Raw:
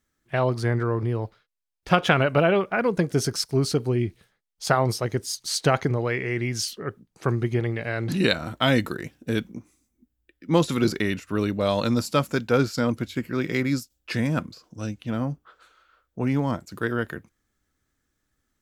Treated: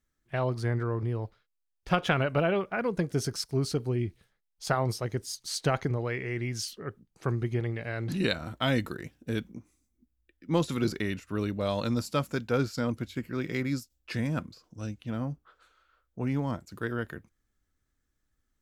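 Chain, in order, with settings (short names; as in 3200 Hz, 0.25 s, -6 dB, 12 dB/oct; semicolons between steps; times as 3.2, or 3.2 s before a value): low shelf 62 Hz +11.5 dB; gain -7 dB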